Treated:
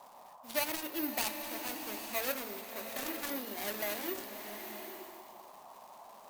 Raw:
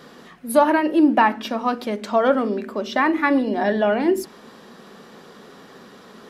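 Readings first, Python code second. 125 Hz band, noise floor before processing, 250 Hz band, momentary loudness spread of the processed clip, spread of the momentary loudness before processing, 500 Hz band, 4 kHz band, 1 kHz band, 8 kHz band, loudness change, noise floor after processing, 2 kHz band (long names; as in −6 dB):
can't be measured, −46 dBFS, −22.5 dB, 19 LU, 9 LU, −20.5 dB, −6.0 dB, −21.5 dB, −1.0 dB, −17.0 dB, −55 dBFS, −15.5 dB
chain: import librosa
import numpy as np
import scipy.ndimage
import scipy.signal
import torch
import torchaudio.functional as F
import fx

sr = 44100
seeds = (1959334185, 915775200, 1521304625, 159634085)

y = scipy.signal.medfilt(x, 41)
y = F.preemphasis(torch.from_numpy(y), 0.97).numpy()
y = (np.kron(y[::3], np.eye(3)[0]) * 3)[:len(y)]
y = fx.high_shelf(y, sr, hz=12000.0, db=-9.5)
y = fx.dmg_noise_band(y, sr, seeds[0], low_hz=580.0, high_hz=1100.0, level_db=-58.0)
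y = fx.rev_bloom(y, sr, seeds[1], attack_ms=860, drr_db=6.0)
y = y * librosa.db_to_amplitude(3.0)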